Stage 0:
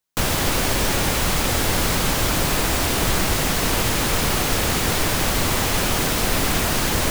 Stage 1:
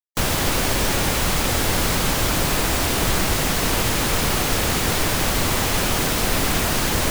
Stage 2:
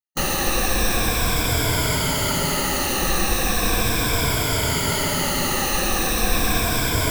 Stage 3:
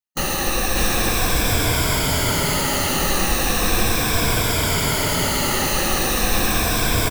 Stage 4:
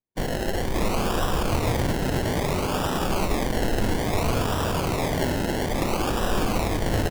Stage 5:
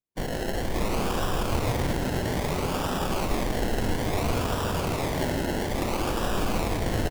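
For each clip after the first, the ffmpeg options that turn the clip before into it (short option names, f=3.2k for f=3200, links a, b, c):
-af "afftfilt=real='re*gte(hypot(re,im),0.01)':imag='im*gte(hypot(re,im),0.01)':win_size=1024:overlap=0.75"
-af "afftfilt=real='re*pow(10,14/40*sin(2*PI*(1.7*log(max(b,1)*sr/1024/100)/log(2)-(-0.37)*(pts-256)/sr)))':imag='im*pow(10,14/40*sin(2*PI*(1.7*log(max(b,1)*sr/1024/100)/log(2)-(-0.37)*(pts-256)/sr)))':win_size=1024:overlap=0.75,volume=-3dB"
-af "aecho=1:1:592:0.668"
-af "acrusher=samples=29:mix=1:aa=0.000001:lfo=1:lforange=17.4:lforate=0.6,volume=-4.5dB"
-af "aecho=1:1:165:0.473,volume=-3.5dB"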